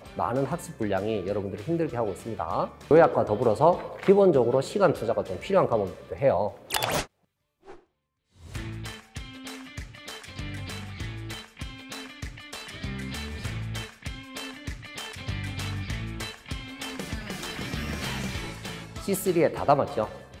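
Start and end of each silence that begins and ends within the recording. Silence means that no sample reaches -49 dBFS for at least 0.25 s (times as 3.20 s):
7.07–7.65 s
7.79–8.36 s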